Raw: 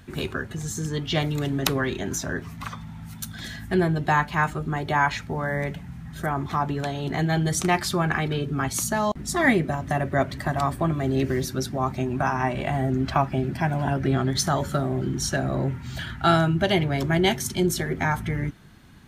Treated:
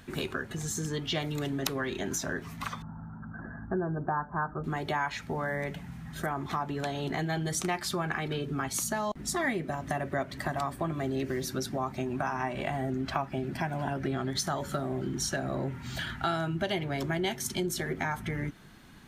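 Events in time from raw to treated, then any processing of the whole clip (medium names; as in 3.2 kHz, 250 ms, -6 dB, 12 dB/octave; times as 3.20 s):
2.82–4.64 s: steep low-pass 1.6 kHz 96 dB/octave
whole clip: peaking EQ 81 Hz -7.5 dB 1.9 oct; compression 3:1, threshold -30 dBFS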